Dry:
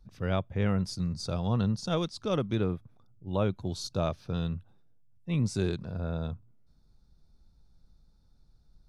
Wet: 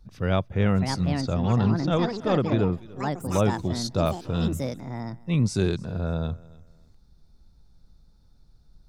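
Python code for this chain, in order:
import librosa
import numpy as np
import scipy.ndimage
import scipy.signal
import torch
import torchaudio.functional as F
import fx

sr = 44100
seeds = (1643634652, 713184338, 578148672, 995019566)

p1 = x + fx.echo_feedback(x, sr, ms=293, feedback_pct=26, wet_db=-22.0, dry=0)
p2 = fx.echo_pitch(p1, sr, ms=664, semitones=6, count=2, db_per_echo=-6.0)
p3 = fx.air_absorb(p2, sr, metres=170.0, at=(1.2, 2.71), fade=0.02)
y = F.gain(torch.from_numpy(p3), 5.5).numpy()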